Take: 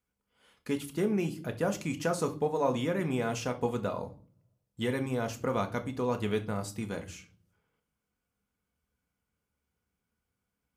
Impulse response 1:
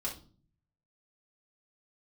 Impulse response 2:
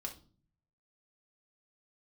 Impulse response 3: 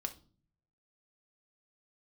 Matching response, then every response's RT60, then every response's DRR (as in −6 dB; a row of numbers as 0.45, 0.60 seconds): 3; 0.40, 0.40, 0.40 seconds; −4.5, 1.0, 5.5 decibels